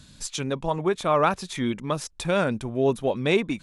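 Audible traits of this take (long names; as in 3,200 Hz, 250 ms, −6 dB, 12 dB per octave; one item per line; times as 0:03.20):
background noise floor −52 dBFS
spectral slope −5.0 dB per octave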